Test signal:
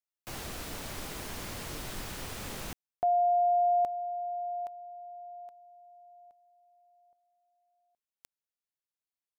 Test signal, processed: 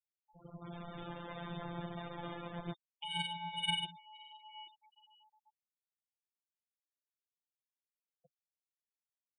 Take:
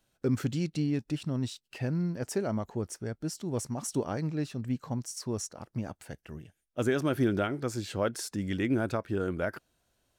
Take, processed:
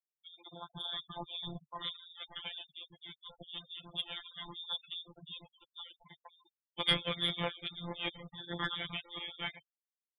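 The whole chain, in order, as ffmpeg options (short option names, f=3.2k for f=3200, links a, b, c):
-filter_complex "[0:a]aeval=exprs='if(lt(val(0),0),0.447*val(0),val(0))':c=same,asplit=2[a][b];[b]adelay=140,highpass=300,lowpass=3.4k,asoftclip=type=hard:threshold=-26dB,volume=-17dB[c];[a][c]amix=inputs=2:normalize=0,flanger=delay=5:depth=4:regen=1:speed=0.34:shape=triangular,lowpass=f=3.1k:t=q:w=0.5098,lowpass=f=3.1k:t=q:w=0.6013,lowpass=f=3.1k:t=q:w=0.9,lowpass=f=3.1k:t=q:w=2.563,afreqshift=-3700,flanger=delay=3.3:depth=2.7:regen=40:speed=0.87:shape=sinusoidal,adynamicsmooth=sensitivity=1:basefreq=610,afftfilt=real='hypot(re,im)*cos(PI*b)':imag='0':win_size=1024:overlap=0.75,dynaudnorm=f=130:g=11:m=14.5dB,afftfilt=real='re*gte(hypot(re,im),0.00112)':imag='im*gte(hypot(re,im),0.00112)':win_size=1024:overlap=0.75,equalizer=f=140:t=o:w=1:g=13.5,volume=12.5dB"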